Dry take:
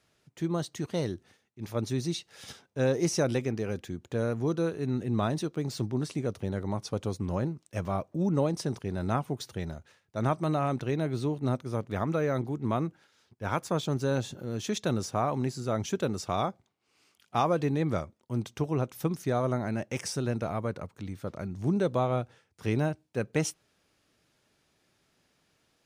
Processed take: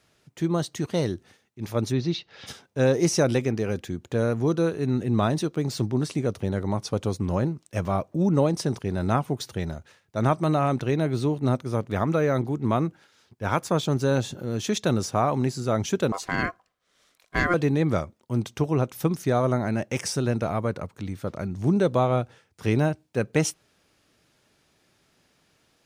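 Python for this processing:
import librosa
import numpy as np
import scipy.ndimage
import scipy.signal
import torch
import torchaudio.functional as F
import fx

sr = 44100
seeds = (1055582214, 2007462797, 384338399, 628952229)

y = fx.lowpass(x, sr, hz=4500.0, slope=24, at=(1.91, 2.46), fade=0.02)
y = fx.ring_mod(y, sr, carrier_hz=880.0, at=(16.12, 17.54))
y = y * librosa.db_to_amplitude(5.5)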